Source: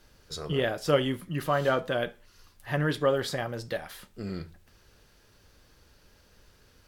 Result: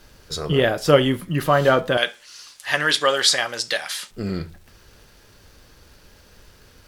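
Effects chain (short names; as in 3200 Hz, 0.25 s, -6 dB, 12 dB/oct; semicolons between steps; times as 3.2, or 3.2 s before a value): 1.97–4.11 weighting filter ITU-R 468; crackle 270/s -55 dBFS; gain +9 dB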